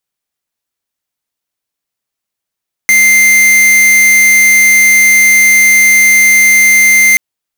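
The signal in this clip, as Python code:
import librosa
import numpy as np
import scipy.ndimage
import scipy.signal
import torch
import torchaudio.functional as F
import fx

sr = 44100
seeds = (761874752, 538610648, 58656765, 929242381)

y = fx.tone(sr, length_s=4.28, wave='square', hz=2090.0, level_db=-6.0)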